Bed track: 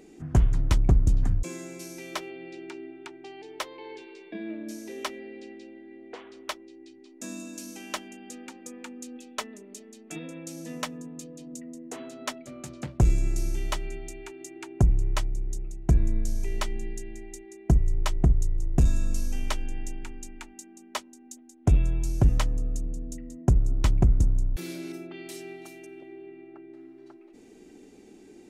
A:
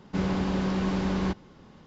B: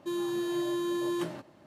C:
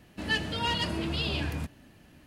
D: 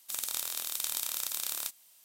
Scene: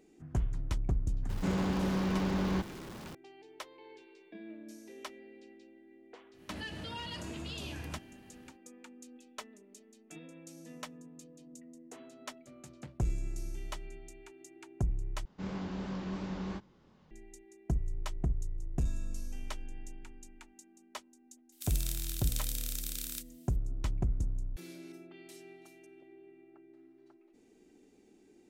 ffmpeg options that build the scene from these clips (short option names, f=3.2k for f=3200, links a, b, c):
-filter_complex "[1:a]asplit=2[a][b];[0:a]volume=-11.5dB[c];[a]aeval=exprs='val(0)+0.5*0.0133*sgn(val(0))':c=same[d];[3:a]acompressor=threshold=-34dB:ratio=6:attack=3.2:release=140:knee=1:detection=peak[e];[b]flanger=delay=20:depth=7.1:speed=2.9[f];[4:a]highpass=f=1.5k:w=0.5412,highpass=f=1.5k:w=1.3066[g];[c]asplit=2[h][i];[h]atrim=end=15.254[j];[f]atrim=end=1.86,asetpts=PTS-STARTPTS,volume=-9dB[k];[i]atrim=start=17.106[l];[d]atrim=end=1.86,asetpts=PTS-STARTPTS,volume=-5dB,afade=t=in:d=0.004:c=hsin,afade=t=out:st=1.856:d=0.004:c=hsin,adelay=1290[m];[e]atrim=end=2.26,asetpts=PTS-STARTPTS,volume=-4dB,afade=t=in:d=0.1,afade=t=out:st=2.16:d=0.1,adelay=6320[n];[g]atrim=end=2.04,asetpts=PTS-STARTPTS,volume=-5.5dB,afade=t=in:d=0.004:c=hsin,afade=t=out:st=2.036:d=0.004:c=hsin,adelay=21520[o];[j][k]acrossfade=d=0.004:c1=hsin:c2=hsin[p];[p][l]acrossfade=d=0.004:c1=hsin:c2=hsin[q];[q][m][n][o]amix=inputs=4:normalize=0"